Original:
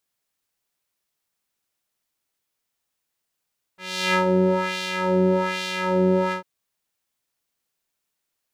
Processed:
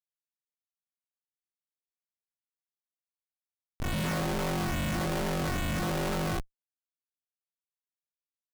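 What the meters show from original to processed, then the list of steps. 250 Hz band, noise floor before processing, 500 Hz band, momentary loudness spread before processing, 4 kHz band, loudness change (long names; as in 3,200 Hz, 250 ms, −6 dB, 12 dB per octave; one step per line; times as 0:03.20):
−9.0 dB, −80 dBFS, −13.0 dB, 8 LU, −8.5 dB, −9.0 dB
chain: spectral peaks only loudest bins 64
ring modulation 210 Hz
comparator with hysteresis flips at −35.5 dBFS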